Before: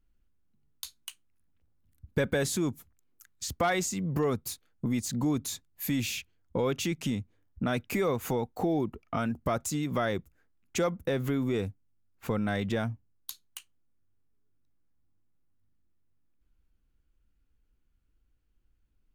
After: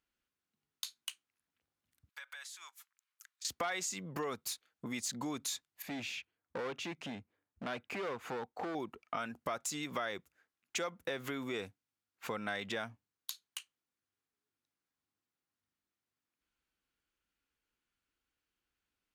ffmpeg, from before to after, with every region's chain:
-filter_complex "[0:a]asettb=1/sr,asplit=3[a][b][c];[a]atrim=end=2.094[d];[b]atrim=start=2.09:end=3.45,asetpts=PTS-STARTPTS,afade=t=in:d=0.004:c=qsin,afade=t=out:st=1.356:d=0.004:c=qsin,highpass=f=1k:w=0.5412,highpass=f=1k:w=1.3066,acompressor=threshold=-47dB:ratio=6:attack=3.2:release=140:knee=1:detection=peak[e];[c]atrim=start=3.446[f];[d][e]acrossfade=d=0.004:c1=hsin:c2=qsin[g];[g][f]acrossfade=d=0.004:c1=qsin:c2=hsin,asettb=1/sr,asplit=3[h][i][j];[h]atrim=end=5.824[k];[i]atrim=start=5.82:end=8.75,asetpts=PTS-STARTPTS,afade=t=in:d=0.004:c=qsin,afade=t=out:st=2.926:d=0.004:c=qsin,lowpass=f=1.3k:p=1,asoftclip=type=hard:threshold=-27.5dB[l];[j]atrim=start=8.746[m];[k][l]acrossfade=d=0.004:c1=hsin:c2=qsin[n];[n][m]acrossfade=d=0.004:c1=qsin:c2=hsin,highpass=f=1.4k:p=1,highshelf=f=9k:g=-11.5,acompressor=threshold=-38dB:ratio=4,volume=4dB"

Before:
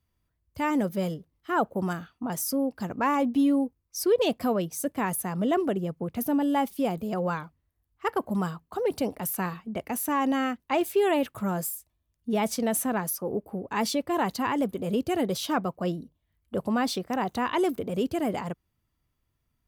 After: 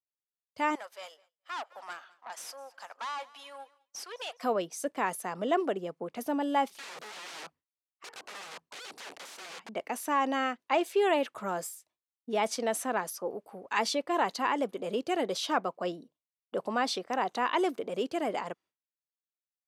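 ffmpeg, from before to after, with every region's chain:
-filter_complex "[0:a]asettb=1/sr,asplit=3[a][b][c];[a]atrim=end=0.754[d];[b]atrim=start=0.75:end=4.43,asetpts=PTS-STARTPTS,afade=t=in:d=0.004:c=qsin,afade=t=out:st=3.676:d=0.004:c=qsin,highpass=f=770:w=0.5412,highpass=f=770:w=1.3066,aeval=exprs='(tanh(50.1*val(0)+0.55)-tanh(0.55))/50.1':c=same,aecho=1:1:208|416|624|832:0.0891|0.0455|0.0232|0.0118,atrim=end_sample=162288[e];[c]atrim=start=4.426[f];[d][e]acrossfade=d=0.004:c1=hsin:c2=qsin[g];[g][f]acrossfade=d=0.004:c1=qsin:c2=hsin,asettb=1/sr,asplit=3[h][i][j];[h]atrim=end=6.694[k];[i]atrim=start=6.69:end=9.69,asetpts=PTS-STARTPTS,afade=t=in:d=0.004:c=qsin,afade=t=out:st=2.996:d=0.004:c=qsin,lowshelf=f=130:g=10.5,acompressor=threshold=-32dB:ratio=4:attack=3.2:release=140:knee=1:detection=peak,aeval=exprs='(mod(79.4*val(0)+1,2)-1)/79.4':c=same[l];[j]atrim=start=9.686[m];[k][l]acrossfade=d=0.004:c1=hsin:c2=qsin[n];[n][m]acrossfade=d=0.004:c1=qsin:c2=hsin,asettb=1/sr,asplit=3[o][p][q];[o]atrim=end=13.304[r];[p]atrim=start=13.3:end=13.79,asetpts=PTS-STARTPTS,afade=t=in:d=0.004:c=qsin,afade=t=out:st=0.486:d=0.004:c=qsin,highpass=60,equalizer=f=360:t=o:w=2.9:g=-14,acontrast=74[s];[q]atrim=start=13.786[t];[r][s]acrossfade=d=0.004:c1=hsin:c2=qsin[u];[u][t]acrossfade=d=0.004:c1=qsin:c2=hsin,highpass=410,agate=range=-33dB:threshold=-54dB:ratio=3:detection=peak,lowpass=7.3k"

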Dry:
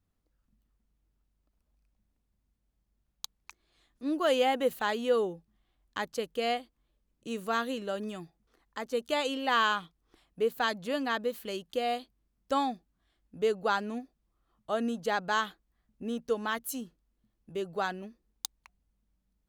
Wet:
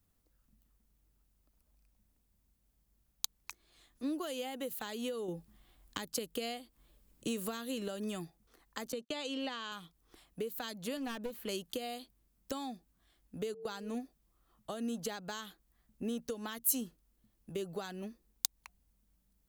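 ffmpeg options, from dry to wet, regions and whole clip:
-filter_complex "[0:a]asettb=1/sr,asplit=3[a][b][c];[a]atrim=end=5.284[d];[b]atrim=start=5.28:end=7.88,asetpts=PTS-STARTPTS,afade=t=in:d=0.004:c=qsin,afade=t=out:st=2.596:d=0.004:c=qsin,bandreject=f=6.1k:w=19,acontrast=70[e];[c]atrim=start=7.876[f];[d][e]acrossfade=d=0.004:c1=hsin:c2=qsin[g];[g][f]acrossfade=d=0.004:c1=qsin:c2=hsin,asettb=1/sr,asplit=3[h][i][j];[h]atrim=end=8.924[k];[i]atrim=start=8.92:end=9.72,asetpts=PTS-STARTPTS,afade=t=in:d=0.004:c=qsin,afade=t=out:st=0.796:d=0.004:c=qsin,highpass=110,lowpass=5.7k,agate=range=-36dB:threshold=-45dB:ratio=16:release=100:detection=peak[l];[j]atrim=start=9.716[m];[k][l]acrossfade=d=0.004:c1=hsin:c2=qsin[n];[n][m]acrossfade=d=0.004:c1=qsin:c2=hsin,asettb=1/sr,asplit=3[o][p][q];[o]atrim=end=10.974[r];[p]atrim=start=10.97:end=11.49,asetpts=PTS-STARTPTS,afade=t=in:d=0.004:c=qsin,afade=t=out:st=0.516:d=0.004:c=qsin,acrossover=split=2700[s][t];[t]acompressor=threshold=-57dB:ratio=4:attack=1:release=60[u];[s][u]amix=inputs=2:normalize=0,aeval=exprs='clip(val(0),-1,0.0266)':c=same[v];[q]atrim=start=11.486[w];[r][v]acrossfade=d=0.004:c1=hsin:c2=qsin[x];[x][w]acrossfade=d=0.004:c1=qsin:c2=hsin,asettb=1/sr,asplit=3[y][z][aa];[y]atrim=end=13.544[ab];[z]atrim=start=13.54:end=13.95,asetpts=PTS-STARTPTS,afade=t=in:d=0.004:c=qsin,afade=t=out:st=0.406:d=0.004:c=qsin,agate=range=-16dB:threshold=-38dB:ratio=16:release=100:detection=peak,aeval=exprs='val(0)+0.00891*sin(2*PI*450*n/s)':c=same[ac];[aa]atrim=start=13.946[ad];[ab][ac]acrossfade=d=0.004:c1=hsin:c2=qsin[ae];[ae][ad]acrossfade=d=0.004:c1=qsin:c2=hsin,acompressor=threshold=-35dB:ratio=6,highshelf=f=7.4k:g=12,acrossover=split=380|3000[af][ag][ah];[ag]acompressor=threshold=-44dB:ratio=6[ai];[af][ai][ah]amix=inputs=3:normalize=0,volume=2dB"

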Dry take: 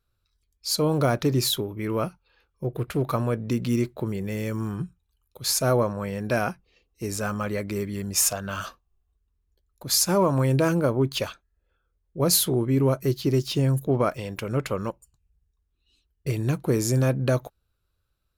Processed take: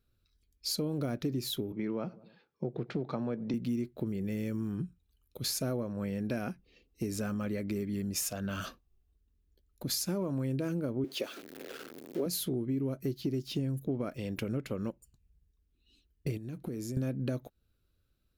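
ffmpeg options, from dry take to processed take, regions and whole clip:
-filter_complex "[0:a]asettb=1/sr,asplit=3[a][b][c];[a]atrim=end=1.724[d];[b]atrim=start=1.72:end=3.54,asetpts=PTS-STARTPTS,afade=t=in:d=0.004:c=qsin,afade=t=out:st=1.816:d=0.004:c=qsin,highpass=f=140:w=0.5412,highpass=f=140:w=1.3066,equalizer=f=280:t=q:w=4:g=-5,equalizer=f=830:t=q:w=4:g=8,equalizer=f=2.8k:t=q:w=4:g=-5,lowpass=f=5.3k:w=0.5412,lowpass=f=5.3k:w=1.3066,asplit=2[e][f];[f]adelay=98,lowpass=f=910:p=1,volume=-22dB,asplit=2[g][h];[h]adelay=98,lowpass=f=910:p=1,volume=0.47,asplit=2[i][j];[j]adelay=98,lowpass=f=910:p=1,volume=0.47[k];[e][g][i][k]amix=inputs=4:normalize=0,atrim=end_sample=80262[l];[c]atrim=start=3.536[m];[d][l]acrossfade=d=0.004:c1=hsin:c2=qsin[n];[n][m]acrossfade=d=0.004:c1=qsin:c2=hsin,asettb=1/sr,asplit=3[o][p][q];[o]atrim=end=11.044[r];[p]atrim=start=11.04:end=12.26,asetpts=PTS-STARTPTS,afade=t=in:d=0.004:c=qsin,afade=t=out:st=1.216:d=0.004:c=qsin,aeval=exprs='val(0)+0.5*0.0168*sgn(val(0))':c=same,highpass=f=370:t=q:w=1.8[s];[q]atrim=start=12.256[t];[r][s]acrossfade=d=0.004:c1=hsin:c2=qsin[u];[u][t]acrossfade=d=0.004:c1=qsin:c2=hsin,asettb=1/sr,asplit=3[v][w][x];[v]atrim=end=16.374[y];[w]atrim=start=16.37:end=16.97,asetpts=PTS-STARTPTS,afade=t=in:d=0.004:c=qsin,afade=t=out:st=0.596:d=0.004:c=qsin,agate=range=-6dB:threshold=-34dB:ratio=16:release=100:detection=peak,acompressor=threshold=-36dB:ratio=16:attack=3.2:release=140:knee=1:detection=peak[z];[x]atrim=start=16.966[aa];[y][z]acrossfade=d=0.004:c1=hsin:c2=qsin[ab];[ab][aa]acrossfade=d=0.004:c1=qsin:c2=hsin,equalizer=f=250:t=o:w=1:g=8,equalizer=f=1k:t=o:w=1:g=-8,equalizer=f=8k:t=o:w=1:g=-4,acompressor=threshold=-32dB:ratio=5"

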